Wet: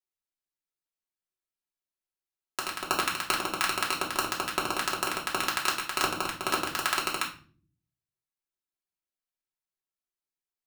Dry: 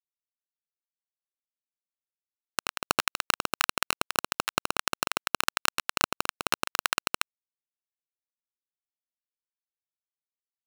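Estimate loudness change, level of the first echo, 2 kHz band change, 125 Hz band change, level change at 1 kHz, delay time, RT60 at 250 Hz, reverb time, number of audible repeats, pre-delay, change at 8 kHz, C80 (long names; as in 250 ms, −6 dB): 0.0 dB, no echo audible, −0.5 dB, +0.5 dB, +1.0 dB, no echo audible, 0.80 s, 0.45 s, no echo audible, 3 ms, −1.0 dB, 15.0 dB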